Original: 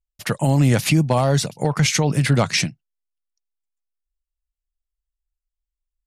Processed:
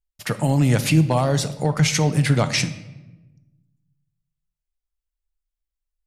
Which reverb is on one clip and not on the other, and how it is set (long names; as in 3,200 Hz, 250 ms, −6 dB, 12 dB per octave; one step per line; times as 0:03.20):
rectangular room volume 490 cubic metres, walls mixed, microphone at 0.4 metres
level −2 dB